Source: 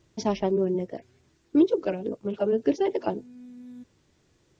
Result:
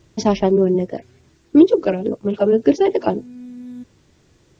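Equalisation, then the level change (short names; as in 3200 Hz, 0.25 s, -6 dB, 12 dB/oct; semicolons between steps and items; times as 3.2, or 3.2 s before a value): low shelf 200 Hz +3 dB; +8.5 dB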